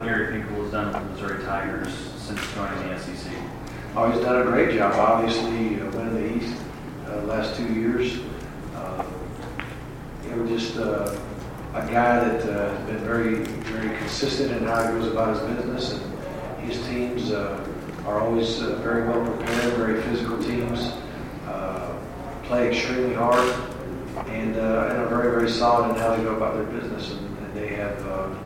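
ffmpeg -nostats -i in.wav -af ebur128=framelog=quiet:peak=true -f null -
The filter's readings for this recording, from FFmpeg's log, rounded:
Integrated loudness:
  I:         -25.3 LUFS
  Threshold: -35.4 LUFS
Loudness range:
  LRA:         6.1 LU
  Threshold: -45.2 LUFS
  LRA low:   -28.8 LUFS
  LRA high:  -22.7 LUFS
True peak:
  Peak:       -6.4 dBFS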